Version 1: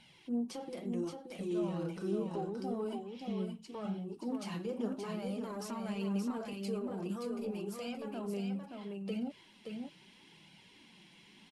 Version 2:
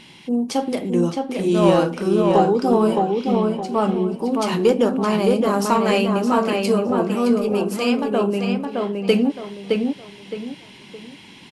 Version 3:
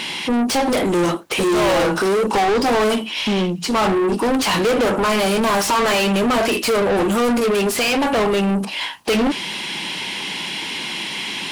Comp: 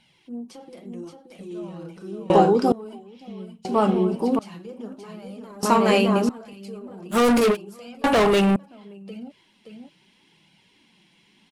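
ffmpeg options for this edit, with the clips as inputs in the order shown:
-filter_complex "[1:a]asplit=3[s0][s1][s2];[2:a]asplit=2[s3][s4];[0:a]asplit=6[s5][s6][s7][s8][s9][s10];[s5]atrim=end=2.302[s11];[s0]atrim=start=2.298:end=2.722[s12];[s6]atrim=start=2.718:end=3.652[s13];[s1]atrim=start=3.648:end=4.392[s14];[s7]atrim=start=4.388:end=5.632[s15];[s2]atrim=start=5.628:end=6.292[s16];[s8]atrim=start=6.288:end=7.17[s17];[s3]atrim=start=7.11:end=7.57[s18];[s9]atrim=start=7.51:end=8.042[s19];[s4]atrim=start=8.038:end=8.562[s20];[s10]atrim=start=8.558[s21];[s11][s12]acrossfade=d=0.004:c1=hsin:c2=hsin[s22];[s22][s13]acrossfade=d=0.004:c1=hsin:c2=hsin[s23];[s23][s14]acrossfade=d=0.004:c1=hsin:c2=hsin[s24];[s24][s15]acrossfade=d=0.004:c1=hsin:c2=hsin[s25];[s25][s16]acrossfade=d=0.004:c1=hsin:c2=hsin[s26];[s26][s17]acrossfade=d=0.004:c1=hsin:c2=hsin[s27];[s27][s18]acrossfade=d=0.06:c1=tri:c2=tri[s28];[s28][s19]acrossfade=d=0.06:c1=tri:c2=tri[s29];[s29][s20]acrossfade=d=0.004:c1=hsin:c2=hsin[s30];[s30][s21]acrossfade=d=0.004:c1=hsin:c2=hsin"

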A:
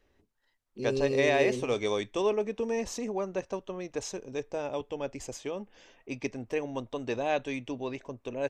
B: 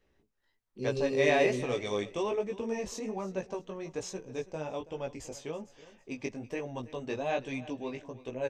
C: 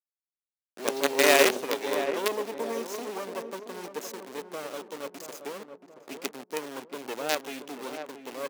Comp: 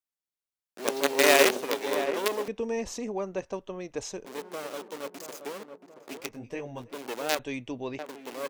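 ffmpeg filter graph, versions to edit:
-filter_complex "[0:a]asplit=2[s0][s1];[2:a]asplit=4[s2][s3][s4][s5];[s2]atrim=end=2.482[s6];[s0]atrim=start=2.478:end=4.252[s7];[s3]atrim=start=4.248:end=6.4[s8];[1:a]atrim=start=6.16:end=6.99[s9];[s4]atrim=start=6.75:end=7.392[s10];[s1]atrim=start=7.388:end=7.992[s11];[s5]atrim=start=7.988[s12];[s6][s7]acrossfade=d=0.004:c1=hsin:c2=hsin[s13];[s13][s8]acrossfade=d=0.004:c1=hsin:c2=hsin[s14];[s14][s9]acrossfade=d=0.24:c1=tri:c2=tri[s15];[s15][s10]acrossfade=d=0.24:c1=tri:c2=tri[s16];[s16][s11]acrossfade=d=0.004:c1=hsin:c2=hsin[s17];[s17][s12]acrossfade=d=0.004:c1=hsin:c2=hsin"

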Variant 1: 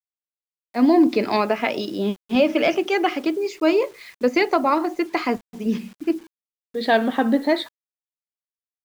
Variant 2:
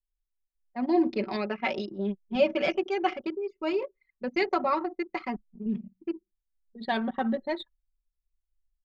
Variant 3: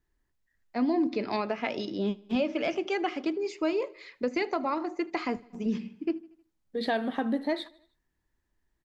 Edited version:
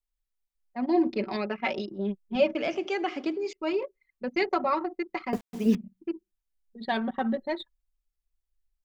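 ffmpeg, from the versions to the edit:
-filter_complex "[1:a]asplit=3[s0][s1][s2];[s0]atrim=end=2.552[s3];[2:a]atrim=start=2.548:end=3.532[s4];[s1]atrim=start=3.528:end=5.332[s5];[0:a]atrim=start=5.328:end=5.752[s6];[s2]atrim=start=5.748[s7];[s3][s4]acrossfade=d=0.004:c1=hsin:c2=hsin[s8];[s8][s5]acrossfade=d=0.004:c1=hsin:c2=hsin[s9];[s9][s6]acrossfade=d=0.004:c1=hsin:c2=hsin[s10];[s10][s7]acrossfade=d=0.004:c1=hsin:c2=hsin"

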